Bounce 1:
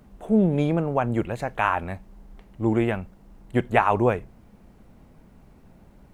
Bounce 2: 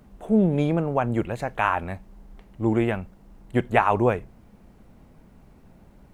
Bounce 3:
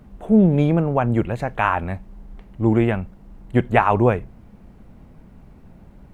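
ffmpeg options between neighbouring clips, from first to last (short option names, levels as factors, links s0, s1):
-af anull
-af "bass=f=250:g=4,treble=f=4000:g=-5,volume=1.41"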